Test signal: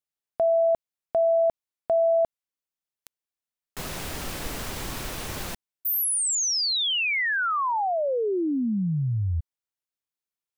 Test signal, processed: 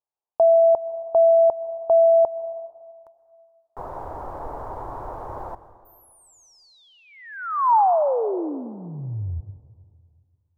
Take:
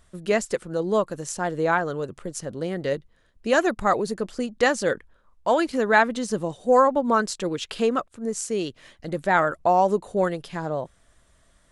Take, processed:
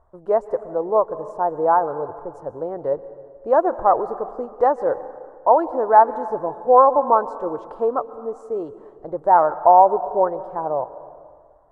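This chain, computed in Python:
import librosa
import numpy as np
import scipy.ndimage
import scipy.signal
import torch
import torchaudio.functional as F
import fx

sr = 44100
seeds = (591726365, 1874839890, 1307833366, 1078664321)

y = fx.curve_eq(x, sr, hz=(110.0, 200.0, 310.0, 930.0, 2600.0), db=(0, -11, 0, 13, -28))
y = fx.rev_plate(y, sr, seeds[0], rt60_s=2.0, hf_ratio=0.65, predelay_ms=105, drr_db=14.5)
y = y * librosa.db_to_amplitude(-2.5)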